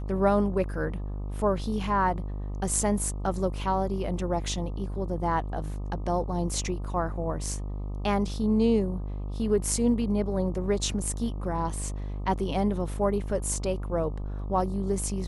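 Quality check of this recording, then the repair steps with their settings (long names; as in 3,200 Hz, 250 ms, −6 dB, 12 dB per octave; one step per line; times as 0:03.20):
mains buzz 50 Hz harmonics 25 −33 dBFS
0:11.05: drop-out 3.2 ms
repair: hum removal 50 Hz, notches 25
repair the gap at 0:11.05, 3.2 ms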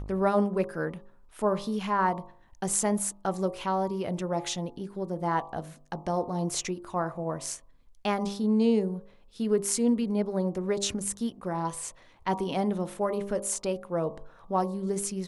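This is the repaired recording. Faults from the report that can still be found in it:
none of them is left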